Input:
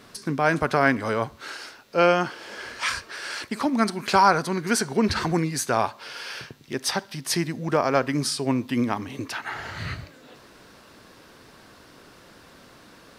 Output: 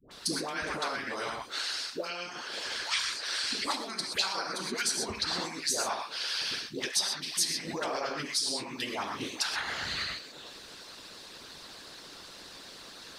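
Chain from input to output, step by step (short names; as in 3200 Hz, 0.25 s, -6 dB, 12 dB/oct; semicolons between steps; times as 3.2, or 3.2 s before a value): ten-band EQ 125 Hz -8 dB, 4000 Hz +11 dB, 8000 Hz +6 dB; non-linear reverb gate 0.15 s flat, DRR -1.5 dB; compressor 6:1, threshold -24 dBFS, peak gain reduction 14.5 dB; dispersion highs, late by 0.111 s, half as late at 710 Hz; harmonic-percussive split harmonic -17 dB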